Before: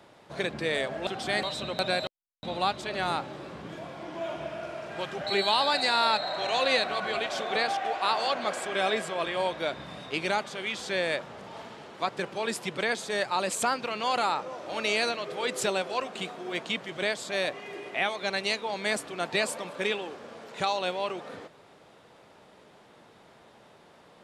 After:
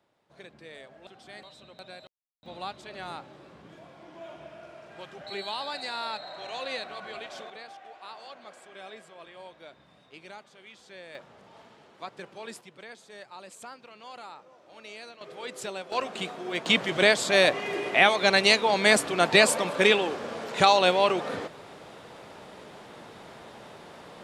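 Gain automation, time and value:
-17.5 dB
from 2.46 s -9.5 dB
from 7.5 s -17.5 dB
from 11.15 s -10 dB
from 12.61 s -17 dB
from 15.21 s -8 dB
from 15.92 s +1.5 dB
from 16.66 s +9 dB

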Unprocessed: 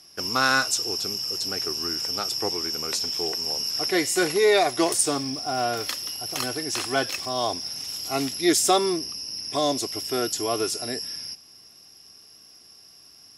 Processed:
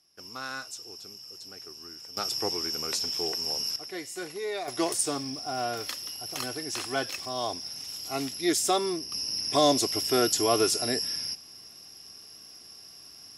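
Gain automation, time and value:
-16 dB
from 2.17 s -3 dB
from 3.76 s -14.5 dB
from 4.68 s -5.5 dB
from 9.12 s +2 dB

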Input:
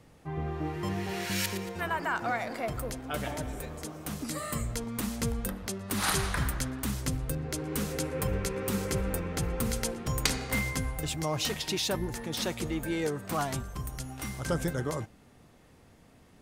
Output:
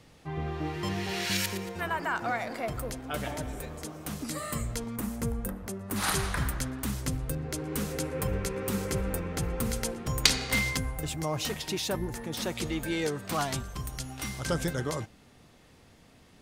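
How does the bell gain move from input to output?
bell 4000 Hz 1.8 oct
+7.5 dB
from 1.37 s +0.5 dB
from 4.96 s -10.5 dB
from 5.96 s -1 dB
from 10.24 s +8.5 dB
from 10.77 s -3 dB
from 12.55 s +6 dB

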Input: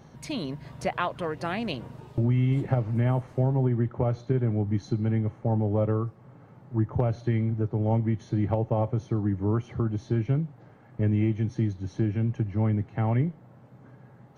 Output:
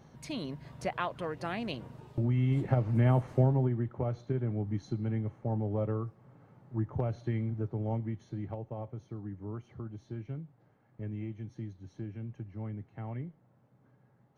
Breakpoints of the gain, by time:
2.26 s -5.5 dB
3.34 s +1 dB
3.79 s -7 dB
7.7 s -7 dB
8.68 s -14.5 dB

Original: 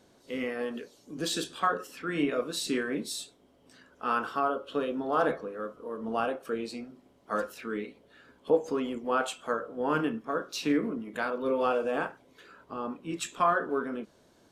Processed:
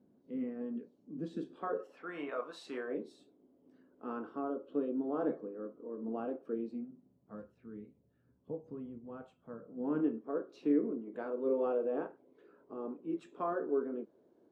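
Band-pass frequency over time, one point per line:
band-pass, Q 1.9
1.35 s 220 Hz
2.19 s 940 Hz
2.69 s 940 Hz
3.21 s 300 Hz
6.54 s 300 Hz
7.44 s 110 Hz
9.41 s 110 Hz
10.12 s 370 Hz

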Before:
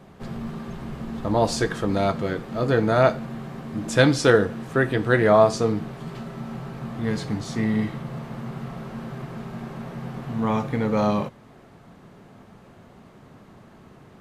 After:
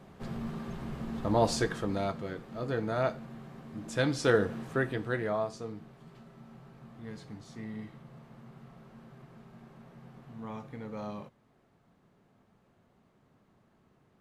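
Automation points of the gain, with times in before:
1.52 s -5 dB
2.23 s -12 dB
4.02 s -12 dB
4.55 s -5.5 dB
5.51 s -18 dB

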